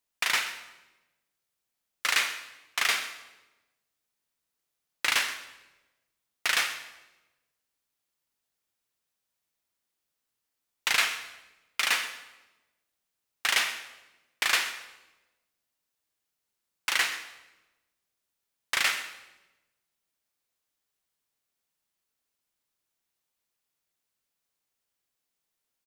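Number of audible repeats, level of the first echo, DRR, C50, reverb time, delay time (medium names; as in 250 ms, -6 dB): 1, -16.5 dB, 8.5 dB, 9.5 dB, 1.1 s, 128 ms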